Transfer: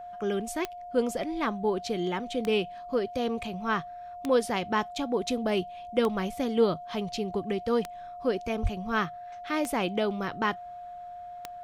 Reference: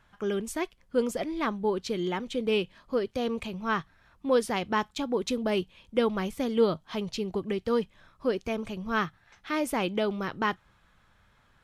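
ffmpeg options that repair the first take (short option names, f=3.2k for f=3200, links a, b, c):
-filter_complex "[0:a]adeclick=t=4,bandreject=f=710:w=30,asplit=3[a][b][c];[a]afade=t=out:st=8.62:d=0.02[d];[b]highpass=f=140:w=0.5412,highpass=f=140:w=1.3066,afade=t=in:st=8.62:d=0.02,afade=t=out:st=8.74:d=0.02[e];[c]afade=t=in:st=8.74:d=0.02[f];[d][e][f]amix=inputs=3:normalize=0"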